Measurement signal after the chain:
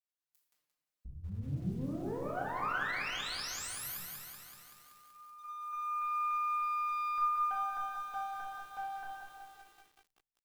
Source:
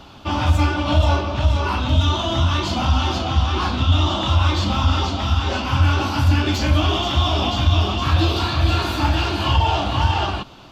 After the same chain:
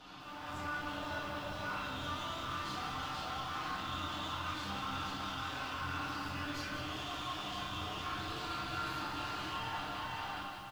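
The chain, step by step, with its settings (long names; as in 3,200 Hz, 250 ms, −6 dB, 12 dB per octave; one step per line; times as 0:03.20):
fade-out on the ending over 1.02 s
comb filter 6.6 ms, depth 71%
on a send: repeating echo 175 ms, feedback 27%, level −19.5 dB
on the sum: downward compressor 2.5 to 1, threshold −34 dBFS
tube saturation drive 29 dB, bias 0.75
low-shelf EQ 340 Hz −8.5 dB
brickwall limiter −38 dBFS
dynamic equaliser 1,400 Hz, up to +7 dB, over −59 dBFS, Q 2
rectangular room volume 420 cubic metres, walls mixed, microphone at 1.9 metres
automatic gain control gain up to 7 dB
feedback echo at a low word length 190 ms, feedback 80%, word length 8 bits, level −8.5 dB
level −8.5 dB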